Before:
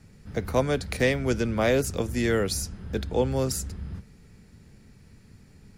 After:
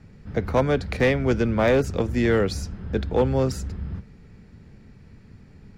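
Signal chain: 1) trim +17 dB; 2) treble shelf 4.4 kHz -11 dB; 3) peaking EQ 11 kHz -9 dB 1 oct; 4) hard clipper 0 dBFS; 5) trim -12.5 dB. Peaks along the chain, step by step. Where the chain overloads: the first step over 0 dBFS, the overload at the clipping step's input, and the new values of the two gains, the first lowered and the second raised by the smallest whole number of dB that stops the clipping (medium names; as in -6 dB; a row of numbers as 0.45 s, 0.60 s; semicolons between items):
+6.0 dBFS, +6.0 dBFS, +6.0 dBFS, 0.0 dBFS, -12.5 dBFS; step 1, 6.0 dB; step 1 +11 dB, step 5 -6.5 dB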